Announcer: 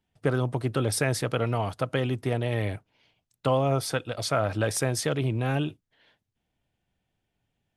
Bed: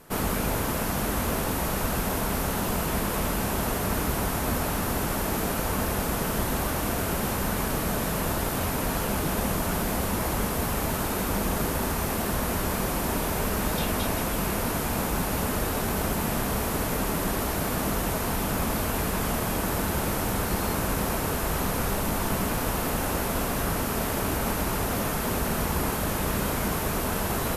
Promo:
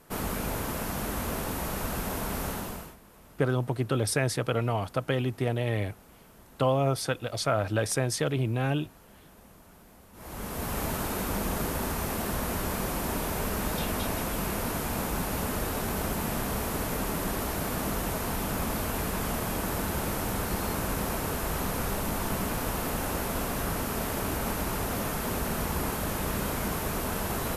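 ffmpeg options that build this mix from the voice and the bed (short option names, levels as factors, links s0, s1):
-filter_complex "[0:a]adelay=3150,volume=0.891[s0];[1:a]volume=8.41,afade=t=out:st=2.48:d=0.48:silence=0.0794328,afade=t=in:st=10.13:d=0.67:silence=0.0668344[s1];[s0][s1]amix=inputs=2:normalize=0"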